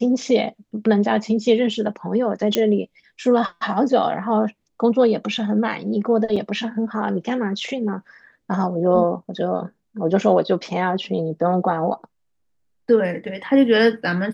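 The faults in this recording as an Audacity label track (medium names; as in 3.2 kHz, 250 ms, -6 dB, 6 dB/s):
2.550000	2.550000	pop -5 dBFS
6.360000	6.360000	dropout 4.7 ms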